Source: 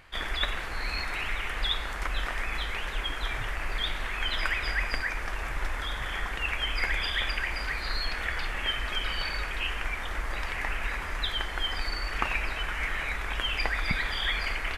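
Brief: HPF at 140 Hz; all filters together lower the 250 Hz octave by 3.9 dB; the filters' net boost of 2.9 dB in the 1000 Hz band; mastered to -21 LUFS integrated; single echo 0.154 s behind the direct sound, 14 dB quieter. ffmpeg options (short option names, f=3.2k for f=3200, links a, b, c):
-af "highpass=140,equalizer=f=250:t=o:g=-5,equalizer=f=1k:t=o:g=4,aecho=1:1:154:0.2,volume=9dB"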